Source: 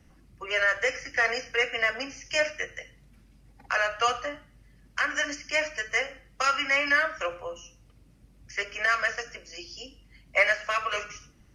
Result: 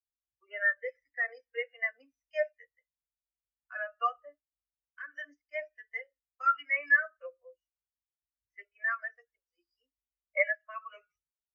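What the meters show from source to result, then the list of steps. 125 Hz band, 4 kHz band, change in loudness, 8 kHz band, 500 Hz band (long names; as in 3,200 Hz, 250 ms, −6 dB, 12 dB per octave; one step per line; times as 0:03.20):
below −40 dB, −22.5 dB, −5.5 dB, below −35 dB, −8.0 dB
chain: every bin expanded away from the loudest bin 2.5 to 1
level −5 dB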